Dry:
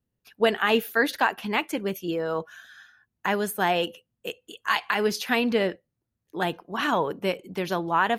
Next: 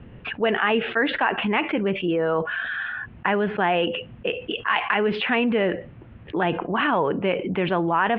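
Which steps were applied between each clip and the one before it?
steep low-pass 3 kHz 48 dB/octave; level flattener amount 70%; trim -2 dB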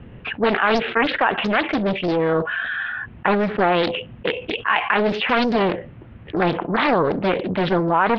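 loudspeaker Doppler distortion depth 0.79 ms; trim +3 dB

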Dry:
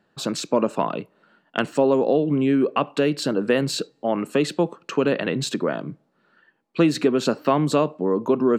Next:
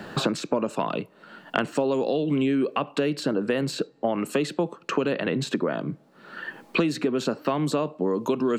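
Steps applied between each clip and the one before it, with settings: in parallel at -2 dB: peak limiter -14 dBFS, peak gain reduction 8.5 dB; on the sum: three bands compressed up and down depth 100%; trim -8.5 dB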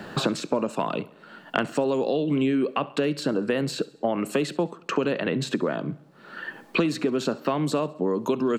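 feedback delay 68 ms, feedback 55%, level -21 dB

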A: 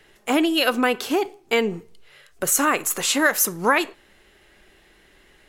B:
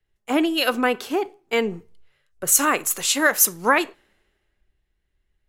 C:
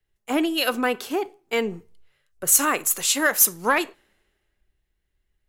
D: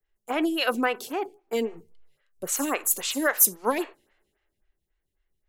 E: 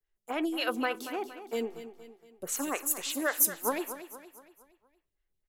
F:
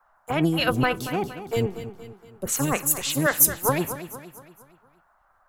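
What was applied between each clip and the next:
three bands expanded up and down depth 70%; trim -1.5 dB
treble shelf 7.1 kHz +5.5 dB; saturation -4.5 dBFS, distortion -19 dB; trim -2 dB
lamp-driven phase shifter 3.7 Hz
feedback delay 233 ms, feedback 46%, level -12 dB; trim -6 dB
octave divider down 1 oct, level +2 dB; band noise 620–1500 Hz -71 dBFS; trim +7.5 dB

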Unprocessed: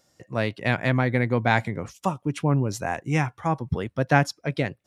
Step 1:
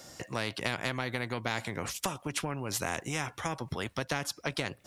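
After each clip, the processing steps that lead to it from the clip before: compression, threshold -27 dBFS, peak gain reduction 14 dB; spectrum-flattening compressor 2:1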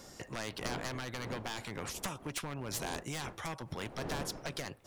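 one-sided wavefolder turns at -27.5 dBFS; wind noise 570 Hz -44 dBFS; trim -4 dB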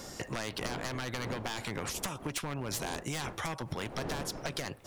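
compression, threshold -40 dBFS, peak gain reduction 7.5 dB; trim +7.5 dB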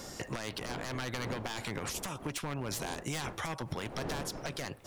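peak limiter -25.5 dBFS, peak gain reduction 7.5 dB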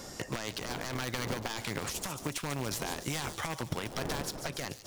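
in parallel at -7.5 dB: bit crusher 5-bit; on the sum: feedback echo behind a high-pass 143 ms, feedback 56%, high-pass 4.4 kHz, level -7 dB

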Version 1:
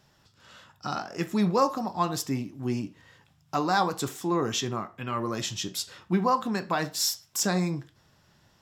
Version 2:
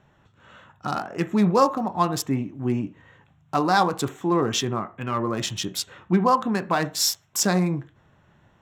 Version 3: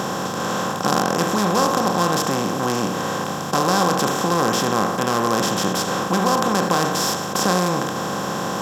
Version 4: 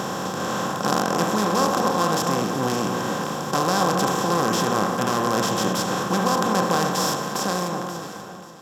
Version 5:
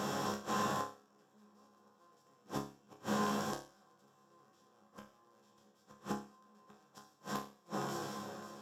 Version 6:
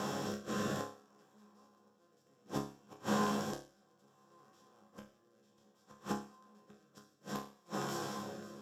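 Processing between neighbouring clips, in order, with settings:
local Wiener filter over 9 samples; trim +5 dB
spectral levelling over time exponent 0.2; trim -6.5 dB
fade out at the end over 1.61 s; echo whose repeats swap between lows and highs 268 ms, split 1.5 kHz, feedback 52%, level -6 dB; trim -3 dB
inverted gate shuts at -14 dBFS, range -37 dB; chord resonator C#2 fifth, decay 0.39 s; trim +2 dB
rotary cabinet horn 0.6 Hz; trim +3 dB

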